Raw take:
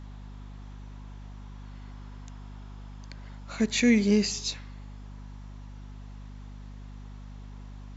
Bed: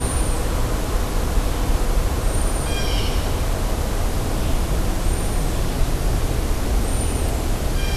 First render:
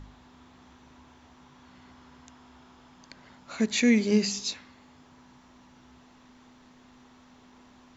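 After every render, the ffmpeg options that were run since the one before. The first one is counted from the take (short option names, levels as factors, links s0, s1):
-af "bandreject=f=50:t=h:w=4,bandreject=f=100:t=h:w=4,bandreject=f=150:t=h:w=4,bandreject=f=200:t=h:w=4"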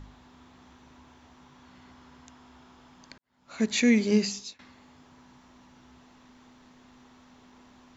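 -filter_complex "[0:a]asplit=3[s0][s1][s2];[s0]atrim=end=3.18,asetpts=PTS-STARTPTS,afade=t=out:st=3.176:d=0.004:c=hsin[s3];[s1]atrim=start=3.18:end=4.59,asetpts=PTS-STARTPTS,afade=t=in:d=0.46:c=qua,afade=t=out:st=1.01:d=0.4:silence=0.0794328[s4];[s2]atrim=start=4.59,asetpts=PTS-STARTPTS,afade=t=in:d=0.004:c=hsin:silence=0.0794328[s5];[s3][s4][s5]concat=n=3:v=0:a=1"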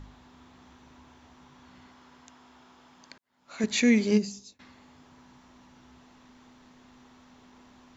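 -filter_complex "[0:a]asettb=1/sr,asplit=3[s0][s1][s2];[s0]atrim=end=1.874[s3];[s1]atrim=start=1.87:end=3.64,asetpts=PTS-STARTPTS,afade=t=in:d=0.004:c=qsin,afade=t=out:st=1.766:d=0.004:c=qsin,lowshelf=f=150:g=-11.5[s4];[s2]atrim=start=3.636[s5];[s3][s4]acrossfade=d=0.004:c1=hsin:c2=qsin[s6];[s6][s5]acrossfade=d=0.004:c1=qsin:c2=hsin,asplit=3[s7][s8][s9];[s7]afade=t=out:st=4.17:d=0.02[s10];[s8]equalizer=f=2100:w=0.37:g=-15,afade=t=in:st=4.17:d=0.02,afade=t=out:st=4.59:d=0.02[s11];[s9]afade=t=in:st=4.59:d=0.02[s12];[s10][s11][s12]amix=inputs=3:normalize=0"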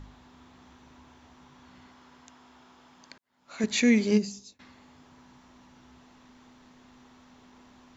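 -af anull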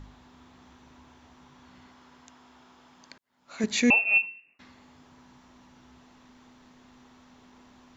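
-filter_complex "[0:a]asettb=1/sr,asplit=3[s0][s1][s2];[s0]atrim=end=3.904[s3];[s1]atrim=start=3.9:end=4.59,asetpts=PTS-STARTPTS,afade=t=in:d=0.004:c=qsin,afade=t=out:st=0.686:d=0.004:c=qsin,lowpass=f=2500:t=q:w=0.5098,lowpass=f=2500:t=q:w=0.6013,lowpass=f=2500:t=q:w=0.9,lowpass=f=2500:t=q:w=2.563,afreqshift=-2900[s4];[s2]atrim=start=4.586[s5];[s3][s4]acrossfade=d=0.004:c1=hsin:c2=qsin[s6];[s6][s5]acrossfade=d=0.004:c1=qsin:c2=hsin"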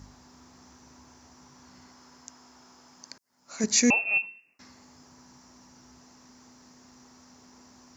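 -af "highpass=55,highshelf=f=4300:t=q:w=3:g=7"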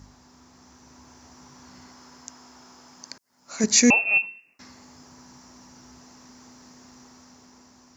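-af "dynaudnorm=f=220:g=9:m=1.78"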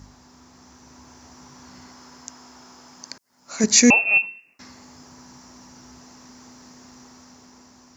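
-af "volume=1.41"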